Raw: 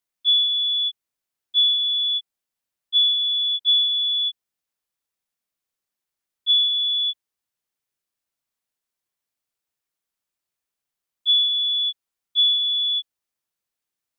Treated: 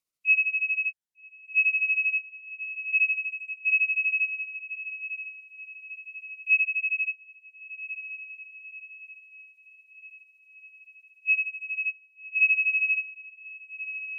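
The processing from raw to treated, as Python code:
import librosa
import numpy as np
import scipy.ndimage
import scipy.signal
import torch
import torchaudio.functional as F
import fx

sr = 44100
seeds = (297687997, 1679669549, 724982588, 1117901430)

p1 = fx.pitch_heads(x, sr, semitones=-5.0)
p2 = fx.transient(p1, sr, attack_db=2, sustain_db=-8)
p3 = p2 + fx.echo_diffused(p2, sr, ms=1220, feedback_pct=51, wet_db=-11, dry=0)
p4 = fx.notch_cascade(p3, sr, direction='rising', hz=0.49)
y = F.gain(torch.from_numpy(p4), -1.5).numpy()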